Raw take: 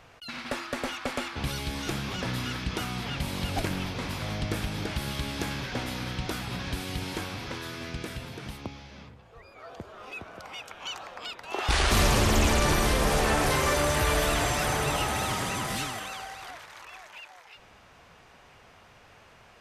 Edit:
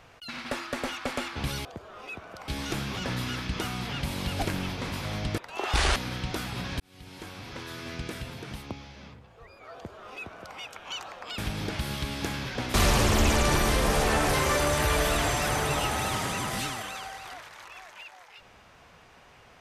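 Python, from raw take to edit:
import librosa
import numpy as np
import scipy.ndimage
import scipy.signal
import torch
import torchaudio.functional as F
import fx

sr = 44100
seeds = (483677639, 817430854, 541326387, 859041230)

y = fx.edit(x, sr, fx.swap(start_s=4.55, length_s=1.36, other_s=11.33, other_length_s=0.58),
    fx.fade_in_span(start_s=6.75, length_s=1.15),
    fx.duplicate(start_s=9.69, length_s=0.83, to_s=1.65), tone=tone)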